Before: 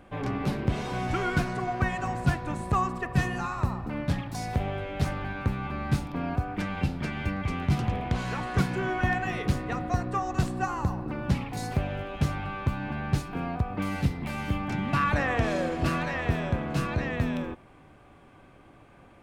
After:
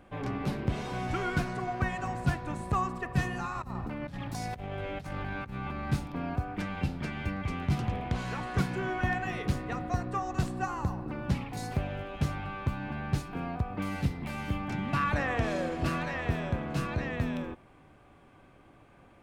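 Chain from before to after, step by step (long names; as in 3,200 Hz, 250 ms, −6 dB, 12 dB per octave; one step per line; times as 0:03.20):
0:03.55–0:05.91: compressor whose output falls as the input rises −34 dBFS, ratio −1
level −3.5 dB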